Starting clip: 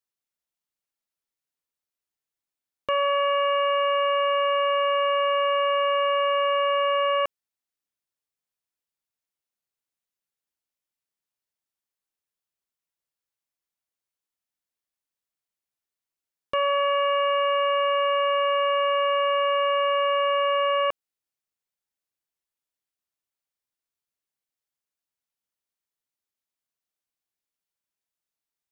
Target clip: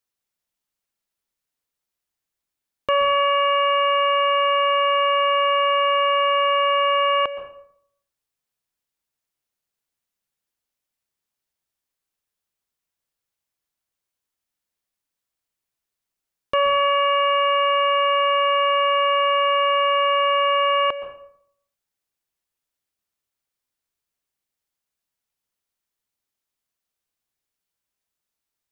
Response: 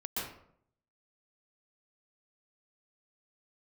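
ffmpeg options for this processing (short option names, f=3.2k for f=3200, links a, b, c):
-filter_complex "[0:a]asplit=2[a][b];[1:a]atrim=start_sample=2205,lowshelf=f=130:g=12[c];[b][c]afir=irnorm=-1:irlink=0,volume=-12dB[d];[a][d]amix=inputs=2:normalize=0,volume=3.5dB"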